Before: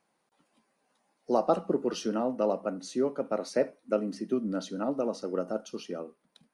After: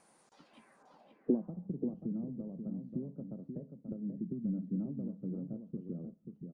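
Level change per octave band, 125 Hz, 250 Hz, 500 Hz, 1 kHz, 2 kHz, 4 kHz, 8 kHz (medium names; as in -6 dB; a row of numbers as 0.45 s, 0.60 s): +3.0 dB, -3.5 dB, -16.5 dB, under -25 dB, under -20 dB, under -25 dB, under -25 dB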